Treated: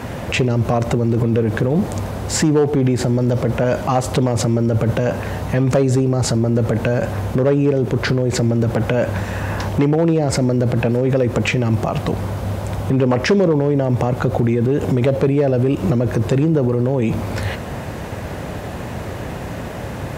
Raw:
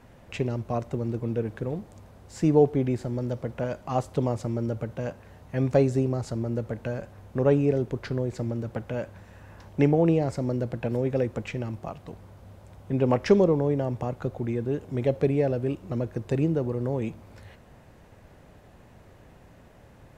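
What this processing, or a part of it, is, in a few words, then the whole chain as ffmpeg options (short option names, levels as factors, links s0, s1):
loud club master: -af "acompressor=threshold=0.0398:ratio=2.5,asoftclip=type=hard:threshold=0.0794,alimiter=level_in=44.7:limit=0.891:release=50:level=0:latency=1,highpass=60,volume=0.422"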